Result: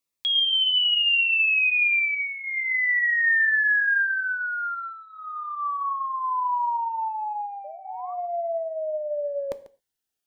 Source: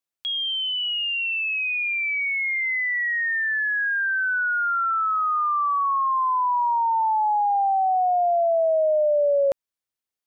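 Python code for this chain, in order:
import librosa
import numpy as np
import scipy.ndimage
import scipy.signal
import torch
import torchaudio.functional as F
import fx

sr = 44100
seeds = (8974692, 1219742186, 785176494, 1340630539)

y = fx.peak_eq(x, sr, hz=2100.0, db=2.5, octaves=1.9, at=(4.02, 6.3))
y = fx.over_compress(y, sr, threshold_db=-24.0, ratio=-0.5)
y = fx.spec_paint(y, sr, seeds[0], shape='rise', start_s=7.64, length_s=0.5, low_hz=580.0, high_hz=1200.0, level_db=-40.0)
y = y + 10.0 ** (-17.0 / 20.0) * np.pad(y, (int(143 * sr / 1000.0), 0))[:len(y)]
y = fx.rev_gated(y, sr, seeds[1], gate_ms=150, shape='falling', drr_db=12.0)
y = fx.notch_cascade(y, sr, direction='falling', hz=0.65)
y = y * librosa.db_to_amplitude(2.0)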